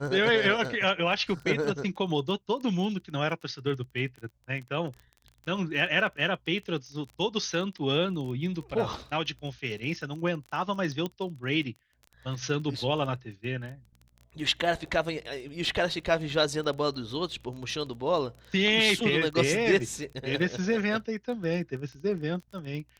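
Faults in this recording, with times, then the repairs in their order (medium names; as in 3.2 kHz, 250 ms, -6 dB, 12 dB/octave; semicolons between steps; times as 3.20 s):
crackle 21 per s -37 dBFS
11.06 s: pop -19 dBFS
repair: de-click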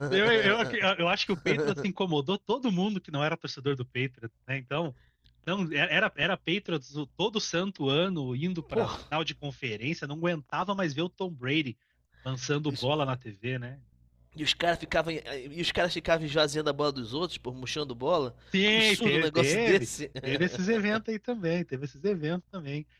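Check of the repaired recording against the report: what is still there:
nothing left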